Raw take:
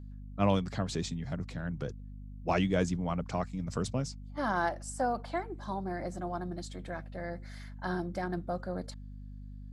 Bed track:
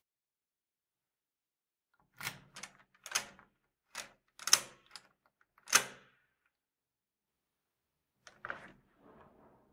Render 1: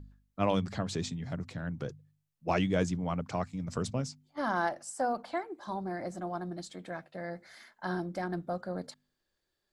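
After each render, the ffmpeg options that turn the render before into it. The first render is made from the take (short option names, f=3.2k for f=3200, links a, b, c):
-af "bandreject=f=50:t=h:w=4,bandreject=f=100:t=h:w=4,bandreject=f=150:t=h:w=4,bandreject=f=200:t=h:w=4,bandreject=f=250:t=h:w=4"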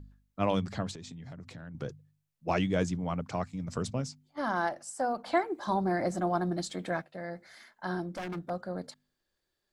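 -filter_complex "[0:a]asettb=1/sr,asplit=3[a][b][c];[a]atrim=end=0.914[d];[b]atrim=start=0.91:end=1.75,asetpts=PTS-STARTPTS,afade=t=in:d=0.004:c=qsin,afade=t=out:st=0.836:d=0.004:c=qsin,acompressor=threshold=-41dB:ratio=8:attack=3.2:release=140:knee=1:detection=peak[e];[c]atrim=start=1.746[f];[d][e]acrossfade=d=0.004:c1=hsin:c2=qsin[g];[g][f]acrossfade=d=0.004:c1=qsin:c2=hsin,asettb=1/sr,asplit=3[h][i][j];[h]atrim=end=8.064[k];[i]atrim=start=8.06:end=8.5,asetpts=PTS-STARTPTS,afade=t=in:d=0.004:c=qsin,afade=t=out:st=0.436:d=0.004:c=qsin,aeval=exprs='0.0282*(abs(mod(val(0)/0.0282+3,4)-2)-1)':c=same[l];[j]atrim=start=8.496[m];[k][l]acrossfade=d=0.004:c1=hsin:c2=qsin[n];[n][m]acrossfade=d=0.004:c1=qsin:c2=hsin,asplit=3[o][p][q];[o]atrim=end=5.262[r];[p]atrim=start=5.258:end=7.022,asetpts=PTS-STARTPTS,volume=7.5dB[s];[q]atrim=start=7.018[t];[r][s]acrossfade=d=0.004:c1=hsin:c2=hsin[u];[u][t]acrossfade=d=0.004:c1=hsin:c2=hsin"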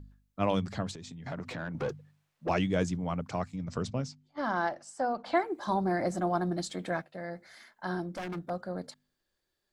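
-filter_complex "[0:a]asettb=1/sr,asplit=3[a][b][c];[a]atrim=end=1.264[d];[b]atrim=start=1.26:end=2.49,asetpts=PTS-STARTPTS,afade=t=in:d=0.004:c=qsin,afade=t=out:st=1.226:d=0.004:c=qsin,asplit=2[e][f];[f]highpass=f=720:p=1,volume=25dB,asoftclip=type=tanh:threshold=-23dB[g];[e][g]amix=inputs=2:normalize=0,lowpass=f=1.5k:p=1,volume=-6dB[h];[c]atrim=start=2.486[i];[d][h]acrossfade=d=0.004:c1=hsin:c2=qsin[j];[j][i]acrossfade=d=0.004:c1=qsin:c2=hsin,asettb=1/sr,asplit=3[k][l][m];[k]atrim=end=3.564[n];[l]atrim=start=3.56:end=5.4,asetpts=PTS-STARTPTS,afade=t=in:d=0.004:c=qsin,afade=t=out:st=1.836:d=0.004:c=qsin,lowpass=6k[o];[m]atrim=start=5.396[p];[n][o]acrossfade=d=0.004:c1=hsin:c2=qsin[q];[q][p]acrossfade=d=0.004:c1=qsin:c2=hsin"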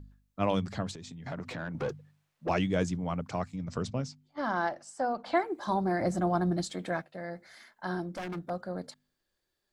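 -filter_complex "[0:a]asettb=1/sr,asplit=3[a][b][c];[a]atrim=end=6.014[d];[b]atrim=start=6.01:end=6.64,asetpts=PTS-STARTPTS,afade=t=in:d=0.004:c=qsin,afade=t=out:st=0.626:d=0.004:c=qsin,equalizer=f=72:t=o:w=2:g=11[e];[c]atrim=start=6.636[f];[d][e]acrossfade=d=0.004:c1=hsin:c2=qsin[g];[g][f]acrossfade=d=0.004:c1=qsin:c2=hsin"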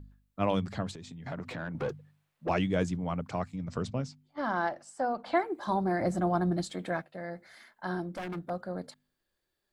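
-af "equalizer=f=5.9k:w=1.5:g=-4.5"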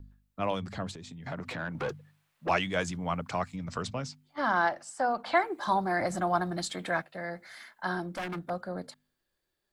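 -filter_complex "[0:a]acrossover=split=530|740[a][b][c];[a]alimiter=level_in=6dB:limit=-24dB:level=0:latency=1,volume=-6dB[d];[c]dynaudnorm=f=230:g=13:m=6.5dB[e];[d][b][e]amix=inputs=3:normalize=0"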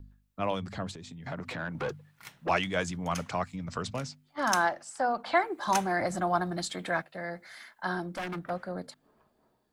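-filter_complex "[1:a]volume=-7dB[a];[0:a][a]amix=inputs=2:normalize=0"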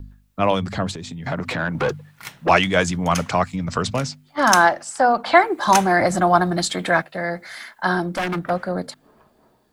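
-af "volume=12dB,alimiter=limit=-1dB:level=0:latency=1"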